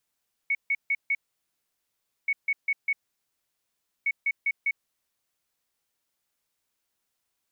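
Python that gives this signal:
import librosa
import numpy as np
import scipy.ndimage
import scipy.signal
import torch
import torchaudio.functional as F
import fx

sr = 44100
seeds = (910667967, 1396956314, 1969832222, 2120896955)

y = fx.beep_pattern(sr, wave='sine', hz=2220.0, on_s=0.05, off_s=0.15, beeps=4, pause_s=1.13, groups=3, level_db=-21.5)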